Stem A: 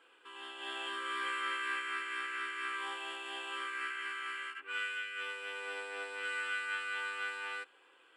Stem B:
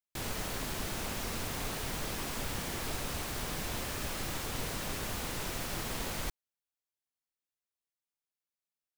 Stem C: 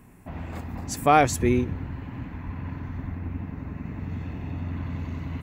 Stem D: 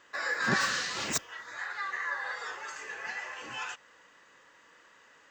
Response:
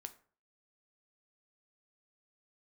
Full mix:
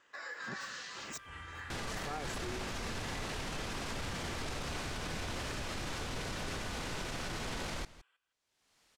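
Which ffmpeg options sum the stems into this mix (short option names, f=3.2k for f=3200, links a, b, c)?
-filter_complex "[0:a]alimiter=level_in=8dB:limit=-24dB:level=0:latency=1,volume=-8dB,highpass=830,volume=-10.5dB,asplit=2[a][b];[b]volume=-13dB[c];[1:a]lowpass=6.6k,acompressor=mode=upward:threshold=-49dB:ratio=2.5,adelay=1550,volume=1dB,asplit=2[d][e];[e]volume=-20.5dB[f];[2:a]aecho=1:1:2.3:0.65,adelay=1000,volume=-18.5dB[g];[3:a]volume=-8.5dB[h];[a][h]amix=inputs=2:normalize=0,acompressor=threshold=-44dB:ratio=2,volume=0dB[i];[c][f]amix=inputs=2:normalize=0,aecho=0:1:165:1[j];[d][g][i][j]amix=inputs=4:normalize=0,alimiter=level_in=6.5dB:limit=-24dB:level=0:latency=1:release=18,volume=-6.5dB"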